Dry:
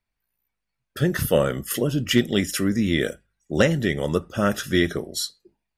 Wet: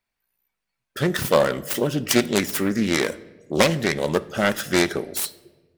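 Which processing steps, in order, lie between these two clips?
phase distortion by the signal itself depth 0.37 ms
low-shelf EQ 170 Hz −11.5 dB
on a send: convolution reverb RT60 1.3 s, pre-delay 5 ms, DRR 16 dB
on the sum: level +3.5 dB

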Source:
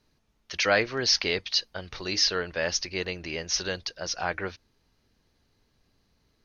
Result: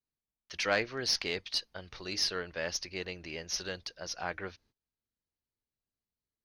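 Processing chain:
noise gate −58 dBFS, range −20 dB
harmonic generator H 3 −21 dB, 4 −30 dB, 8 −45 dB, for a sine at −7.5 dBFS
level −5 dB

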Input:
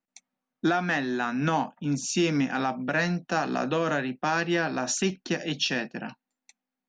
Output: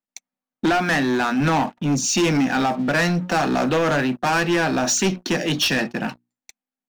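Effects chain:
mains-hum notches 60/120/180/240/300/360 Hz
leveller curve on the samples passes 3

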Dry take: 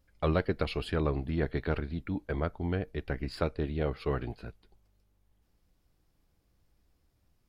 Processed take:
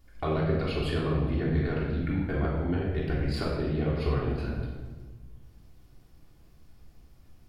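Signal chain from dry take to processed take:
downward compressor 4 to 1, threshold −40 dBFS, peak gain reduction 14.5 dB
rectangular room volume 1,100 cubic metres, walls mixed, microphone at 3.3 metres
level +5.5 dB

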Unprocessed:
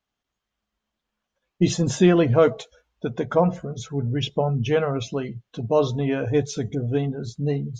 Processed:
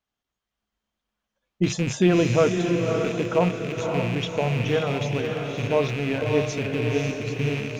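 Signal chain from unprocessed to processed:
loose part that buzzes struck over −29 dBFS, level −20 dBFS
feedback delay with all-pass diffusion 555 ms, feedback 50%, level −4 dB
level −3 dB

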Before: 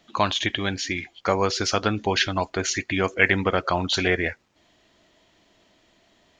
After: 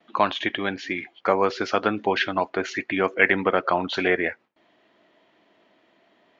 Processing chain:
band-pass filter 230–2,400 Hz
noise gate with hold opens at −59 dBFS
level +2 dB

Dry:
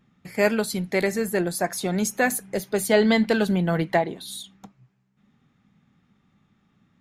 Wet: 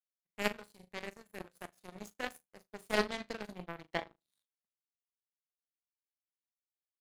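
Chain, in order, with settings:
flutter between parallel walls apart 6.6 metres, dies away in 0.41 s
power curve on the samples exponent 3
level −4 dB

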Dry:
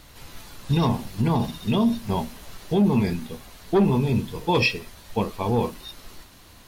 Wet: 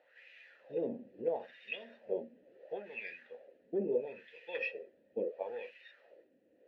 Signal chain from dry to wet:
LFO wah 0.74 Hz 240–2,400 Hz, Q 3
formant filter e
level +8.5 dB

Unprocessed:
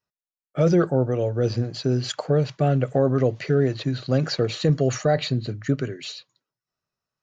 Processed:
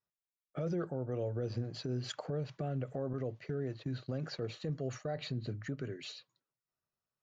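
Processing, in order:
high-shelf EQ 3,200 Hz −7 dB
downward compressor 4 to 1, threshold −25 dBFS, peak gain reduction 9.5 dB
0:03.13–0:05.19: downward expander −30 dBFS
brickwall limiter −21 dBFS, peak gain reduction 6.5 dB
level −7 dB

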